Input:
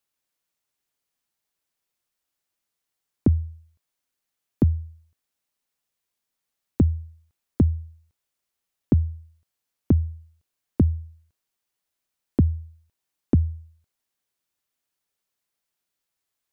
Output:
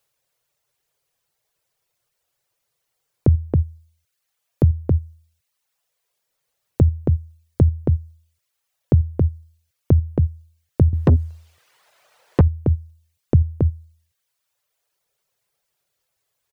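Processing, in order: reverb removal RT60 1.1 s; ten-band graphic EQ 125 Hz +9 dB, 250 Hz -11 dB, 500 Hz +8 dB; echo from a far wall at 47 m, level -8 dB; in parallel at 0 dB: compressor with a negative ratio -23 dBFS, ratio -1; 10.93–12.41 s: on the sum: overdrive pedal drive 36 dB, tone 1 kHz, clips at -4 dBFS

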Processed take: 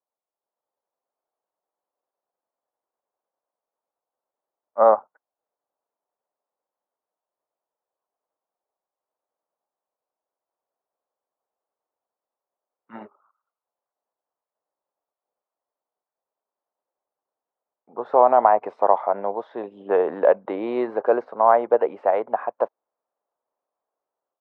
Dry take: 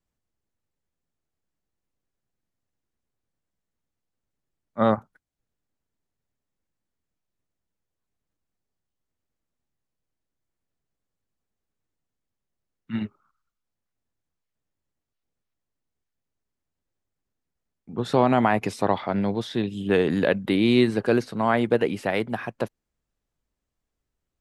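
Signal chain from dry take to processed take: Butterworth band-pass 760 Hz, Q 1.3; level rider gain up to 8 dB; trim +1.5 dB

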